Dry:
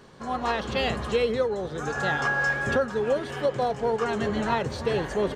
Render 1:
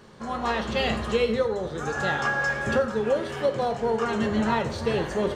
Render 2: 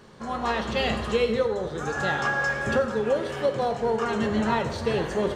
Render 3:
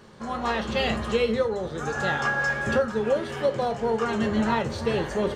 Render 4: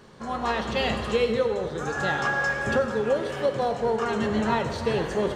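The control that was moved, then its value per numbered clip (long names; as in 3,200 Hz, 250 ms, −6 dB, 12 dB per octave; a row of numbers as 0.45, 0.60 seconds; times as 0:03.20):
reverb whose tail is shaped and stops, gate: 170, 280, 100, 490 milliseconds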